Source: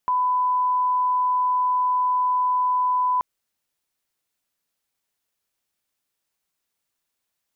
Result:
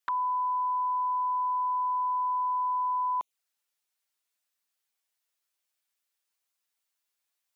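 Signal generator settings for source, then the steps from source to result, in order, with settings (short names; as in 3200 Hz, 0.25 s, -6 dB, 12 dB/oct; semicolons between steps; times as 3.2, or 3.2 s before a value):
line-up tone -18 dBFS 3.13 s
HPF 930 Hz 6 dB/oct; envelope flanger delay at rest 8.9 ms, full sweep at -27 dBFS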